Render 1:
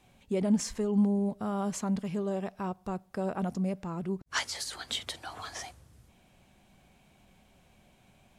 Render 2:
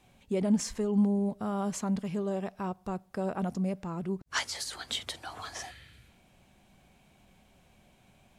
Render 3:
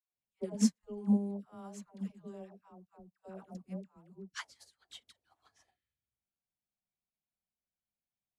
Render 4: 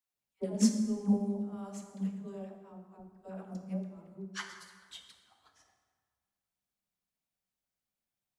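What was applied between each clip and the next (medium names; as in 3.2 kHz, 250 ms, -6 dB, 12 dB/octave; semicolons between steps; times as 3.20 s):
spectral replace 5.61–6.19 s, 1.3–4.8 kHz both
phase dispersion lows, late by 133 ms, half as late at 610 Hz; upward expansion 2.5:1, over -48 dBFS
plate-style reverb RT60 1.6 s, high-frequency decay 0.65×, DRR 4 dB; trim +2 dB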